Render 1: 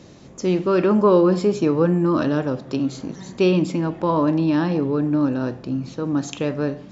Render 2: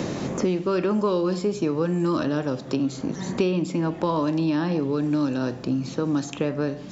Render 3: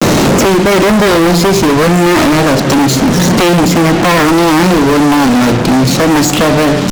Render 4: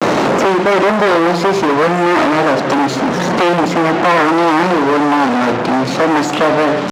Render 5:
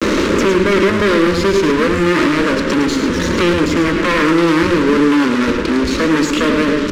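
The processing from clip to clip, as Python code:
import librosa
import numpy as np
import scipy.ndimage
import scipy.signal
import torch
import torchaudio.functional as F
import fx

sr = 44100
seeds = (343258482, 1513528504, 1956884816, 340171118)

y1 = fx.high_shelf(x, sr, hz=5900.0, db=9.0)
y1 = fx.band_squash(y1, sr, depth_pct=100)
y1 = F.gain(torch.from_numpy(y1), -5.0).numpy()
y2 = np.minimum(y1, 2.0 * 10.0 ** (-23.5 / 20.0) - y1)
y2 = fx.vibrato(y2, sr, rate_hz=0.51, depth_cents=83.0)
y2 = fx.fuzz(y2, sr, gain_db=41.0, gate_db=-42.0)
y2 = F.gain(torch.from_numpy(y2), 6.5).numpy()
y3 = fx.bandpass_q(y2, sr, hz=940.0, q=0.6)
y4 = fx.octave_divider(y3, sr, octaves=1, level_db=1.0)
y4 = fx.fixed_phaser(y4, sr, hz=310.0, stages=4)
y4 = y4 + 10.0 ** (-7.5 / 20.0) * np.pad(y4, (int(107 * sr / 1000.0), 0))[:len(y4)]
y4 = F.gain(torch.from_numpy(y4), 1.0).numpy()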